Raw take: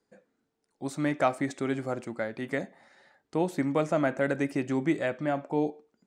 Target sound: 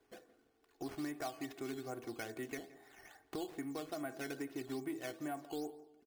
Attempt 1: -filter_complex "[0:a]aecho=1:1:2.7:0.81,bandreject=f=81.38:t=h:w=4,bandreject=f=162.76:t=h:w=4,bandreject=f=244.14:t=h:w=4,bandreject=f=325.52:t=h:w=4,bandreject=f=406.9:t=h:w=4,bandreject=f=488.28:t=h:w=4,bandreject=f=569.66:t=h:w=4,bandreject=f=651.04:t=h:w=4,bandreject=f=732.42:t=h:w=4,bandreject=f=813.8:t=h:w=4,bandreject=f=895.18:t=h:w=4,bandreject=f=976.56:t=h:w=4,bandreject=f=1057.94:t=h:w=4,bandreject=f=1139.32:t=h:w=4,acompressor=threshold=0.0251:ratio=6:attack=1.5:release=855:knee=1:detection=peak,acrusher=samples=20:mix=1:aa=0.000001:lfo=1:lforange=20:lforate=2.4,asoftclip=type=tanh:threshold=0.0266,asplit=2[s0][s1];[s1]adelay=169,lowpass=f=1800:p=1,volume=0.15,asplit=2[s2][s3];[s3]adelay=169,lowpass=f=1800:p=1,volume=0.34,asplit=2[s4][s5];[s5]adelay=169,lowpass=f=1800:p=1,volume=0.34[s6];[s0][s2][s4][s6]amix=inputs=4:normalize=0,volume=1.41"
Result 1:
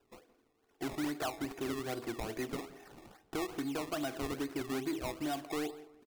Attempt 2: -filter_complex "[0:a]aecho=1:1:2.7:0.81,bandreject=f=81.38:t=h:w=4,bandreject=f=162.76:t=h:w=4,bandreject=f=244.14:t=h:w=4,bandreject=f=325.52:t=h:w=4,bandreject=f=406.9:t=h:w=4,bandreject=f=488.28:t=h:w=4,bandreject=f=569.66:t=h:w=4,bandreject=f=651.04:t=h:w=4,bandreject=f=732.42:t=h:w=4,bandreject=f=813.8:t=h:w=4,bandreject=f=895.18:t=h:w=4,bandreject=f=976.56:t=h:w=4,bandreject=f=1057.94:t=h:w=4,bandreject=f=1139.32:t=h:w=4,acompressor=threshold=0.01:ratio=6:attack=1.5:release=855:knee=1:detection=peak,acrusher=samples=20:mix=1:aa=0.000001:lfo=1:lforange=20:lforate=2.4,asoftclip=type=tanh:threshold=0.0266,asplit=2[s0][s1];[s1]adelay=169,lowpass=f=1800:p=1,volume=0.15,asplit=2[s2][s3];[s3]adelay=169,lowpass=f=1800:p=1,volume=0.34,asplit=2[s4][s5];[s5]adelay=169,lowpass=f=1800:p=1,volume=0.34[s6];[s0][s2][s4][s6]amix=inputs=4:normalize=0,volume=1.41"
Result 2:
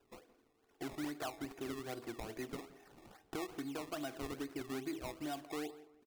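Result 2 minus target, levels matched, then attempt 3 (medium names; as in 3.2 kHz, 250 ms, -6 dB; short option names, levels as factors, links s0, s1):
decimation with a swept rate: distortion +7 dB
-filter_complex "[0:a]aecho=1:1:2.7:0.81,bandreject=f=81.38:t=h:w=4,bandreject=f=162.76:t=h:w=4,bandreject=f=244.14:t=h:w=4,bandreject=f=325.52:t=h:w=4,bandreject=f=406.9:t=h:w=4,bandreject=f=488.28:t=h:w=4,bandreject=f=569.66:t=h:w=4,bandreject=f=651.04:t=h:w=4,bandreject=f=732.42:t=h:w=4,bandreject=f=813.8:t=h:w=4,bandreject=f=895.18:t=h:w=4,bandreject=f=976.56:t=h:w=4,bandreject=f=1057.94:t=h:w=4,bandreject=f=1139.32:t=h:w=4,acompressor=threshold=0.01:ratio=6:attack=1.5:release=855:knee=1:detection=peak,acrusher=samples=8:mix=1:aa=0.000001:lfo=1:lforange=8:lforate=2.4,asoftclip=type=tanh:threshold=0.0266,asplit=2[s0][s1];[s1]adelay=169,lowpass=f=1800:p=1,volume=0.15,asplit=2[s2][s3];[s3]adelay=169,lowpass=f=1800:p=1,volume=0.34,asplit=2[s4][s5];[s5]adelay=169,lowpass=f=1800:p=1,volume=0.34[s6];[s0][s2][s4][s6]amix=inputs=4:normalize=0,volume=1.41"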